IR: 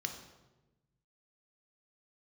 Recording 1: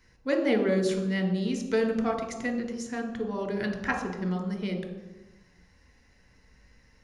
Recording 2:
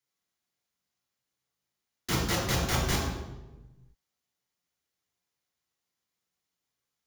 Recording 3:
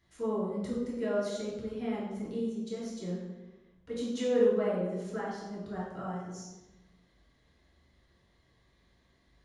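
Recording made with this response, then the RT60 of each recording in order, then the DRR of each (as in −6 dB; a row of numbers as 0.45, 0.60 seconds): 1; 1.1, 1.1, 1.1 seconds; 4.5, −3.5, −7.5 decibels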